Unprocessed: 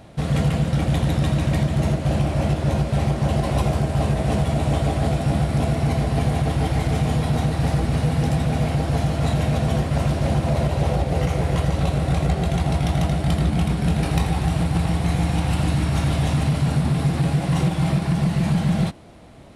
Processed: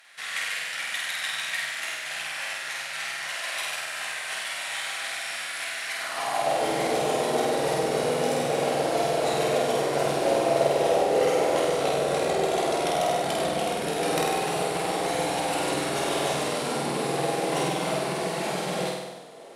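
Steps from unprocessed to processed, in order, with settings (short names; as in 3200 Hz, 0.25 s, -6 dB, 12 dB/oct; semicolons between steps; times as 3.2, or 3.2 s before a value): high shelf 4000 Hz +5.5 dB; on a send: flutter echo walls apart 8.4 m, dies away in 1.1 s; on the sum: added harmonics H 2 -26 dB, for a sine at -3 dBFS; high-pass sweep 1800 Hz -> 440 Hz, 5.94–6.71; gain -3.5 dB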